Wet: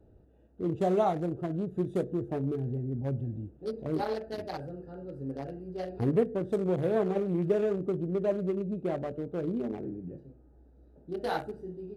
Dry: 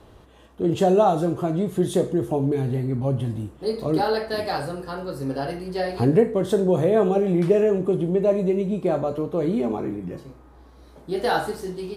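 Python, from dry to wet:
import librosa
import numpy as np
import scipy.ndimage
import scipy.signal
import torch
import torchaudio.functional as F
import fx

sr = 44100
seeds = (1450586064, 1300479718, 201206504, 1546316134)

y = fx.wiener(x, sr, points=41)
y = F.gain(torch.from_numpy(y), -8.0).numpy()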